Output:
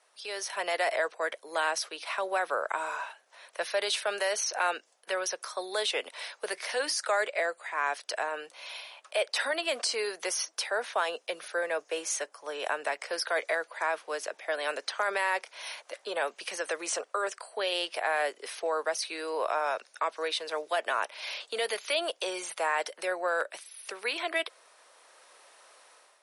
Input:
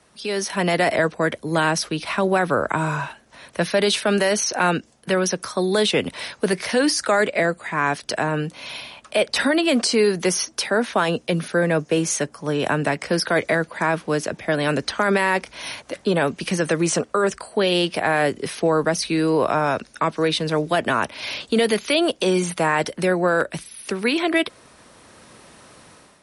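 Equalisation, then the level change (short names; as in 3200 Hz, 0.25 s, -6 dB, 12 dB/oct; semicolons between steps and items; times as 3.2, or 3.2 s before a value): HPF 510 Hz 24 dB/oct; -8.0 dB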